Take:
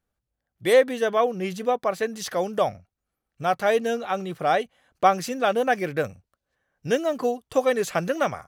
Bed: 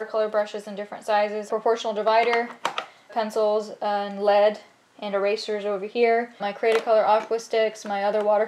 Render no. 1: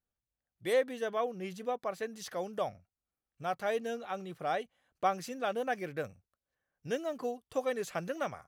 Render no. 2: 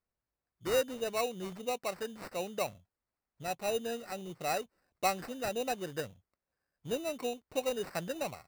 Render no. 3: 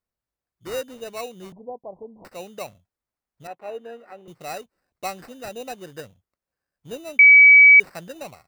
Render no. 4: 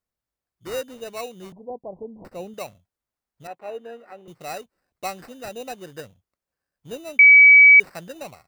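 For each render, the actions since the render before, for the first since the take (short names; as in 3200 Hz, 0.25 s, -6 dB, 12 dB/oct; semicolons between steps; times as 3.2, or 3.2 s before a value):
gain -11.5 dB
LFO notch saw up 1.5 Hz 770–3700 Hz; sample-rate reducer 3300 Hz, jitter 0%
1.52–2.25 steep low-pass 1000 Hz 96 dB/oct; 3.47–4.28 three-band isolator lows -17 dB, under 250 Hz, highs -21 dB, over 2400 Hz; 7.19–7.8 bleep 2280 Hz -6.5 dBFS
1.7–2.54 tilt shelf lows +6.5 dB, about 770 Hz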